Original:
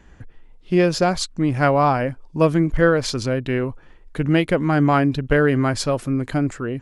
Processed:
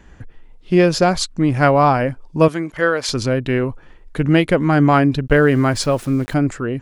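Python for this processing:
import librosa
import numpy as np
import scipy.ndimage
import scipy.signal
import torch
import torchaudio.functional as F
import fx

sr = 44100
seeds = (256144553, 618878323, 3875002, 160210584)

y = fx.highpass(x, sr, hz=740.0, slope=6, at=(2.48, 3.09))
y = fx.sample_gate(y, sr, floor_db=-40.0, at=(5.28, 6.34))
y = y * librosa.db_to_amplitude(3.5)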